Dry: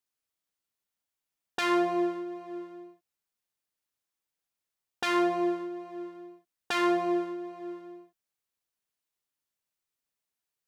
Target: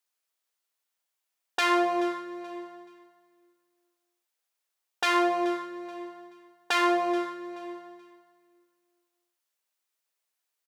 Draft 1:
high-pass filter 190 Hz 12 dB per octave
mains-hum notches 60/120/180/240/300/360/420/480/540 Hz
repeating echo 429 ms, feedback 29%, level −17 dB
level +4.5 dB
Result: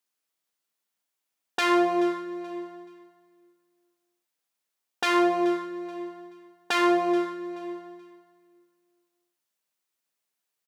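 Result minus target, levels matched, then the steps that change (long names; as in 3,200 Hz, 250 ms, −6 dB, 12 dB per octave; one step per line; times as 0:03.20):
250 Hz band +3.0 dB
change: high-pass filter 420 Hz 12 dB per octave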